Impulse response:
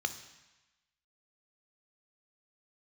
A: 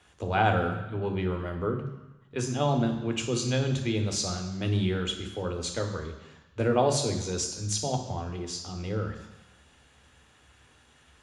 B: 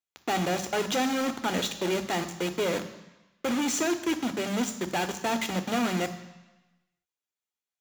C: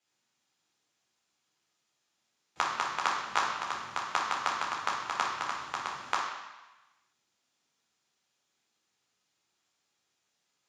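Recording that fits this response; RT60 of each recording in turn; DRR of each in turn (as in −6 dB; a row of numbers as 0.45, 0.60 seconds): B; 1.1, 1.1, 1.1 seconds; 4.0, 9.0, −3.5 decibels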